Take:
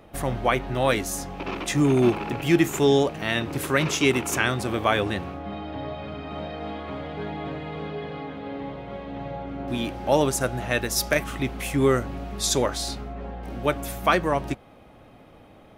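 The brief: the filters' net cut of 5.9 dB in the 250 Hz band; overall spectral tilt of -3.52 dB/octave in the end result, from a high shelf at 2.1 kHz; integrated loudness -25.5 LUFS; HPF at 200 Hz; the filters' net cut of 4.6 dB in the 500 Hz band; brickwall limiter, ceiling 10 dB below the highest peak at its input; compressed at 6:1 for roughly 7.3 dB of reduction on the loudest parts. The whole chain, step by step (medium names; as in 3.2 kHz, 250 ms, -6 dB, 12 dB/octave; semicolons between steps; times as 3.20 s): high-pass 200 Hz; peaking EQ 250 Hz -4.5 dB; peaking EQ 500 Hz -4.5 dB; treble shelf 2.1 kHz +3.5 dB; compression 6:1, threshold -25 dBFS; trim +8 dB; peak limiter -13 dBFS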